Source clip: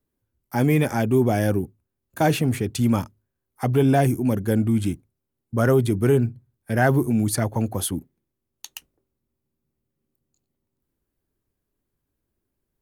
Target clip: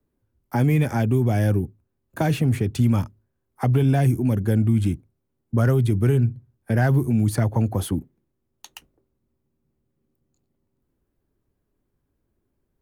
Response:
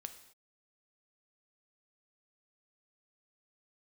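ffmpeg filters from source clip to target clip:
-filter_complex "[0:a]highshelf=f=2100:g=-10.5,acrossover=split=150|1800[s0][s1][s2];[s1]acompressor=threshold=0.0355:ratio=6[s3];[s2]asoftclip=type=tanh:threshold=0.02[s4];[s0][s3][s4]amix=inputs=3:normalize=0,volume=2"

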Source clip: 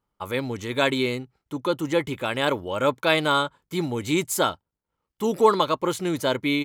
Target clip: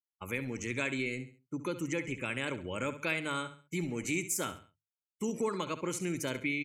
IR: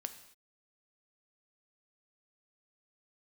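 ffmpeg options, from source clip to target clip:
-filter_complex "[0:a]acrossover=split=110|2700[s0][s1][s2];[s0]aeval=exprs='(mod(126*val(0)+1,2)-1)/126':c=same[s3];[s3][s1][s2]amix=inputs=3:normalize=0,firequalizer=gain_entry='entry(170,0);entry(760,-12);entry(2400,5);entry(3500,-11);entry(5800,5);entry(15000,-2)':delay=0.05:min_phase=1,agate=range=0.0224:threshold=0.00631:ratio=3:detection=peak,bandreject=f=50:t=h:w=6,bandreject=f=100:t=h:w=6,bandreject=f=150:t=h:w=6,acompressor=threshold=0.0355:ratio=2.5,afftdn=nr=22:nf=-51,aecho=1:1:68|136|204:0.237|0.0783|0.0258,volume=0.708"

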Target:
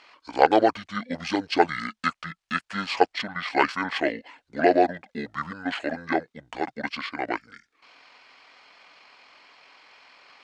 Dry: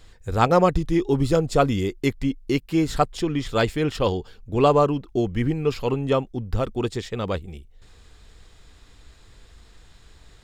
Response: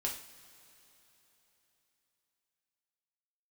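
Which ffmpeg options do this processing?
-af "asetrate=26990,aresample=44100,atempo=1.63392,highpass=650,lowpass=6000,volume=2.24"

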